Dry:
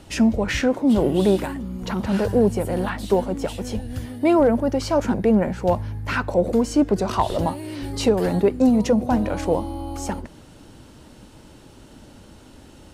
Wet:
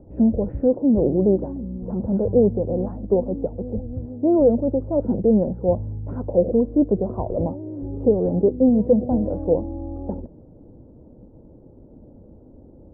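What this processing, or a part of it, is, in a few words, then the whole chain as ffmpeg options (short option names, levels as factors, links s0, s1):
under water: -af "lowpass=f=620:w=0.5412,lowpass=f=620:w=1.3066,equalizer=f=500:t=o:w=0.22:g=4.5"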